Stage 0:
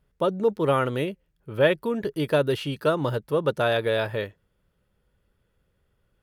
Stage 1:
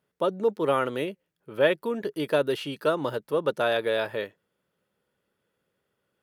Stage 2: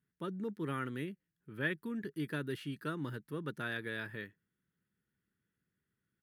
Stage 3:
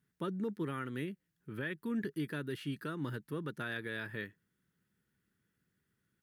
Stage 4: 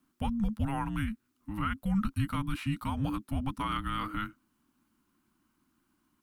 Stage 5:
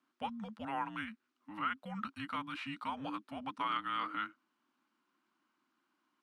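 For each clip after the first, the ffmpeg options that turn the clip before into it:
ffmpeg -i in.wav -af "highpass=220,volume=-1.5dB" out.wav
ffmpeg -i in.wav -af "firequalizer=gain_entry='entry(150,0);entry(320,-6);entry(560,-24);entry(1700,-3);entry(2600,-12);entry(6200,-12);entry(8900,-8)':delay=0.05:min_phase=1,volume=-2dB" out.wav
ffmpeg -i in.wav -af "alimiter=level_in=9dB:limit=-24dB:level=0:latency=1:release=333,volume=-9dB,volume=5dB" out.wav
ffmpeg -i in.wav -af "afreqshift=-420,volume=7dB" out.wav
ffmpeg -i in.wav -af "highpass=430,lowpass=4400,volume=-1dB" out.wav

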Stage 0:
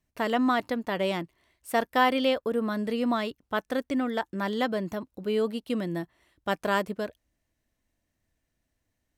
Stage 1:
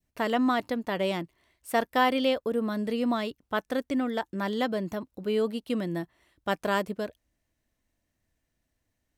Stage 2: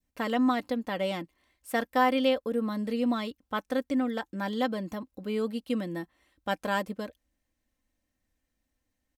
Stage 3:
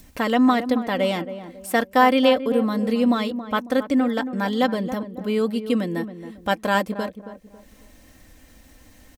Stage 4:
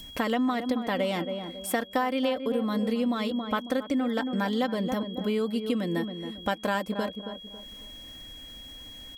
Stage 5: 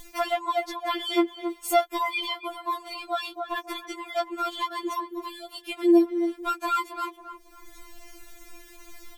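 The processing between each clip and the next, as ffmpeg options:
ffmpeg -i in.wav -af "adynamicequalizer=threshold=0.0112:dfrequency=1400:dqfactor=0.83:tfrequency=1400:tqfactor=0.83:attack=5:release=100:ratio=0.375:range=2:mode=cutabove:tftype=bell" out.wav
ffmpeg -i in.wav -af "aecho=1:1:3.8:0.51,volume=-3dB" out.wav
ffmpeg -i in.wav -filter_complex "[0:a]acompressor=mode=upward:threshold=-39dB:ratio=2.5,asplit=2[link_01][link_02];[link_02]adelay=274,lowpass=frequency=1100:poles=1,volume=-10.5dB,asplit=2[link_03][link_04];[link_04]adelay=274,lowpass=frequency=1100:poles=1,volume=0.37,asplit=2[link_05][link_06];[link_06]adelay=274,lowpass=frequency=1100:poles=1,volume=0.37,asplit=2[link_07][link_08];[link_08]adelay=274,lowpass=frequency=1100:poles=1,volume=0.37[link_09];[link_03][link_05][link_07][link_09]amix=inputs=4:normalize=0[link_10];[link_01][link_10]amix=inputs=2:normalize=0,volume=8dB" out.wav
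ffmpeg -i in.wav -af "aeval=exprs='val(0)+0.00708*sin(2*PI*3300*n/s)':channel_layout=same,acompressor=threshold=-24dB:ratio=6" out.wav
ffmpeg -i in.wav -af "afftfilt=real='re*4*eq(mod(b,16),0)':imag='im*4*eq(mod(b,16),0)':win_size=2048:overlap=0.75,volume=6.5dB" out.wav

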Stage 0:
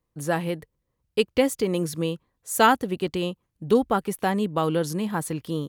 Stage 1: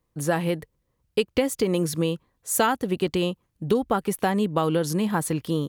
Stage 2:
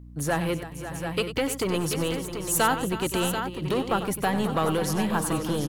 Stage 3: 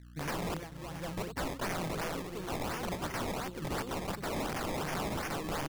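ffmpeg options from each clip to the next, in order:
ffmpeg -i in.wav -af "acompressor=threshold=-22dB:ratio=6,volume=4dB" out.wav
ffmpeg -i in.wav -filter_complex "[0:a]acrossover=split=860[link_01][link_02];[link_01]asoftclip=type=hard:threshold=-24dB[link_03];[link_03][link_02]amix=inputs=2:normalize=0,aeval=exprs='val(0)+0.00708*(sin(2*PI*60*n/s)+sin(2*PI*2*60*n/s)/2+sin(2*PI*3*60*n/s)/3+sin(2*PI*4*60*n/s)/4+sin(2*PI*5*60*n/s)/5)':channel_layout=same,aecho=1:1:95|317|543|625|736:0.266|0.178|0.266|0.126|0.398" out.wav
ffmpeg -i in.wav -af "acrusher=samples=21:mix=1:aa=0.000001:lfo=1:lforange=21:lforate=2.8,aeval=exprs='(mod(14.1*val(0)+1,2)-1)/14.1':channel_layout=same,volume=-7.5dB" out.wav

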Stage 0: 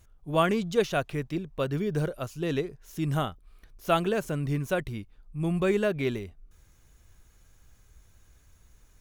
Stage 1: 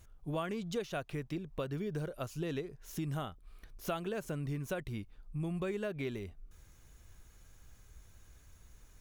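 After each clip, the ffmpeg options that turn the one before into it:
ffmpeg -i in.wav -af "acompressor=threshold=-35dB:ratio=5" out.wav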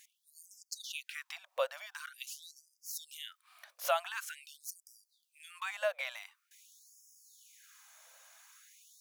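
ffmpeg -i in.wav -af "afftfilt=real='re*gte(b*sr/1024,500*pow(4900/500,0.5+0.5*sin(2*PI*0.46*pts/sr)))':imag='im*gte(b*sr/1024,500*pow(4900/500,0.5+0.5*sin(2*PI*0.46*pts/sr)))':win_size=1024:overlap=0.75,volume=8dB" out.wav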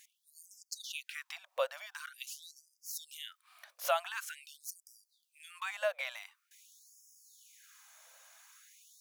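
ffmpeg -i in.wav -af anull out.wav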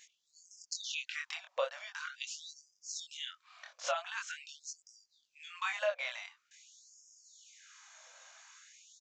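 ffmpeg -i in.wav -af "aresample=16000,aresample=44100,flanger=delay=20:depth=5.2:speed=0.4,alimiter=level_in=5dB:limit=-24dB:level=0:latency=1:release=486,volume=-5dB,volume=7dB" out.wav

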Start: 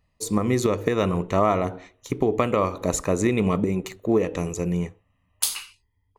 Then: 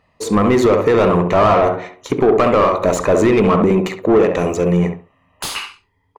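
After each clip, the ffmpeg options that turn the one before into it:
ffmpeg -i in.wav -filter_complex "[0:a]asplit=2[link_01][link_02];[link_02]adelay=68,lowpass=frequency=1200:poles=1,volume=-5.5dB,asplit=2[link_03][link_04];[link_04]adelay=68,lowpass=frequency=1200:poles=1,volume=0.23,asplit=2[link_05][link_06];[link_06]adelay=68,lowpass=frequency=1200:poles=1,volume=0.23[link_07];[link_01][link_03][link_05][link_07]amix=inputs=4:normalize=0,asplit=2[link_08][link_09];[link_09]highpass=frequency=720:poles=1,volume=25dB,asoftclip=type=tanh:threshold=-3.5dB[link_10];[link_08][link_10]amix=inputs=2:normalize=0,lowpass=frequency=1100:poles=1,volume=-6dB,volume=1.5dB" out.wav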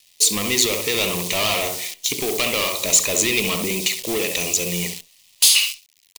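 ffmpeg -i in.wav -af "acrusher=bits=7:dc=4:mix=0:aa=0.000001,aexciter=amount=12.8:drive=7.9:freq=2300,volume=-13dB" out.wav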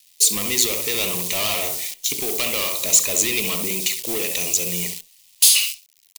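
ffmpeg -i in.wav -af "highshelf=frequency=6500:gain=9,volume=-4.5dB" out.wav

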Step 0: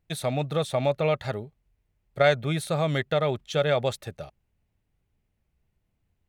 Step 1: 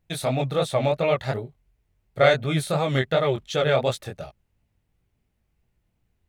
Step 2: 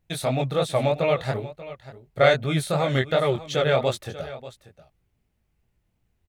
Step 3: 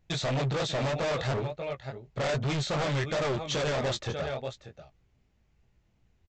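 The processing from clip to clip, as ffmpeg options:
ffmpeg -i in.wav -af "flanger=delay=16:depth=7.5:speed=2.8,volume=6dB" out.wav
ffmpeg -i in.wav -af "aecho=1:1:587:0.158" out.wav
ffmpeg -i in.wav -filter_complex "[0:a]alimiter=limit=-13.5dB:level=0:latency=1:release=42,aresample=16000,asoftclip=type=hard:threshold=-30.5dB,aresample=44100,asplit=2[link_01][link_02];[link_02]adelay=15,volume=-13dB[link_03];[link_01][link_03]amix=inputs=2:normalize=0,volume=3dB" out.wav

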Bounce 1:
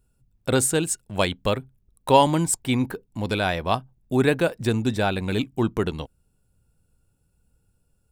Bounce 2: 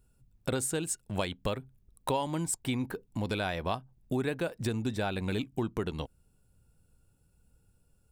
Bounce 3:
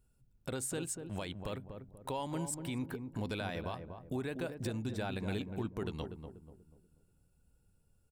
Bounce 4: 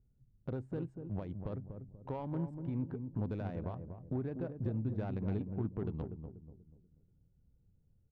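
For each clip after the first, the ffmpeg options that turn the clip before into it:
ffmpeg -i in.wav -af "acompressor=threshold=-30dB:ratio=4" out.wav
ffmpeg -i in.wav -filter_complex "[0:a]alimiter=limit=-23dB:level=0:latency=1:release=72,asplit=2[link_01][link_02];[link_02]adelay=242,lowpass=frequency=800:poles=1,volume=-6dB,asplit=2[link_03][link_04];[link_04]adelay=242,lowpass=frequency=800:poles=1,volume=0.42,asplit=2[link_05][link_06];[link_06]adelay=242,lowpass=frequency=800:poles=1,volume=0.42,asplit=2[link_07][link_08];[link_08]adelay=242,lowpass=frequency=800:poles=1,volume=0.42,asplit=2[link_09][link_10];[link_10]adelay=242,lowpass=frequency=800:poles=1,volume=0.42[link_11];[link_01][link_03][link_05][link_07][link_09][link_11]amix=inputs=6:normalize=0,volume=-5dB" out.wav
ffmpeg -i in.wav -af "equalizer=frequency=120:width_type=o:width=1.6:gain=5.5,adynamicsmooth=sensitivity=1:basefreq=600,volume=-1dB" out.wav

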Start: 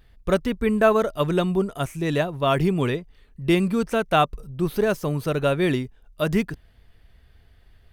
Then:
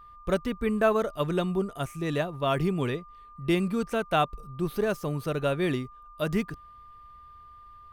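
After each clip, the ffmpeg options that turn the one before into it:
ffmpeg -i in.wav -af "aeval=exprs='val(0)+0.00794*sin(2*PI*1200*n/s)':channel_layout=same,volume=-5.5dB" out.wav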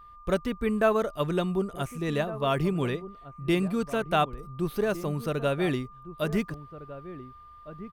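ffmpeg -i in.wav -filter_complex "[0:a]asplit=2[link_01][link_02];[link_02]adelay=1458,volume=-14dB,highshelf=frequency=4000:gain=-32.8[link_03];[link_01][link_03]amix=inputs=2:normalize=0" out.wav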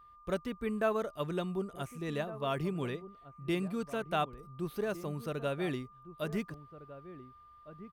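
ffmpeg -i in.wav -af "highpass=frequency=65:poles=1,volume=-7.5dB" out.wav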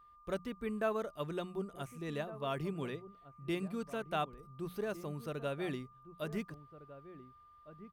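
ffmpeg -i in.wav -af "bandreject=frequency=60:width_type=h:width=6,bandreject=frequency=120:width_type=h:width=6,bandreject=frequency=180:width_type=h:width=6,volume=-3.5dB" out.wav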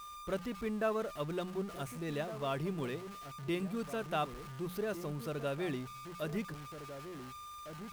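ffmpeg -i in.wav -af "aeval=exprs='val(0)+0.5*0.00596*sgn(val(0))':channel_layout=same" out.wav

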